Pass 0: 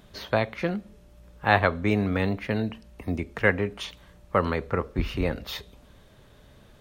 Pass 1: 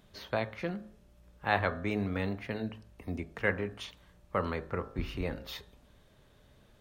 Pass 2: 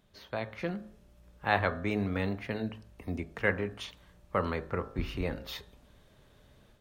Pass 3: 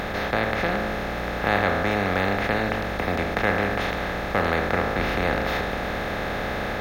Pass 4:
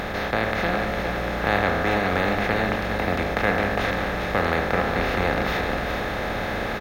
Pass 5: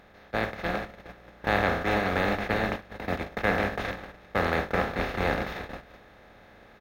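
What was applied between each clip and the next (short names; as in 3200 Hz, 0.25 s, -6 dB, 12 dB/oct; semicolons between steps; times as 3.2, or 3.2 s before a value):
de-hum 53.52 Hz, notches 34; gain -7.5 dB
AGC gain up to 7.5 dB; gain -6 dB
per-bin compression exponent 0.2
echo 0.406 s -6.5 dB
gate -22 dBFS, range -23 dB; gain -3 dB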